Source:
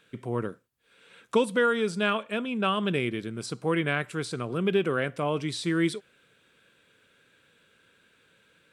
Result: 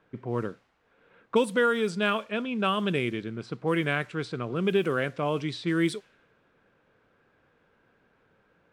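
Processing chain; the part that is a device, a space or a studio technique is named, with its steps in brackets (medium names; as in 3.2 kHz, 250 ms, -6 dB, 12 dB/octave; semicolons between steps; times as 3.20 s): cassette deck with a dynamic noise filter (white noise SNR 30 dB; level-controlled noise filter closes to 1.2 kHz, open at -21 dBFS)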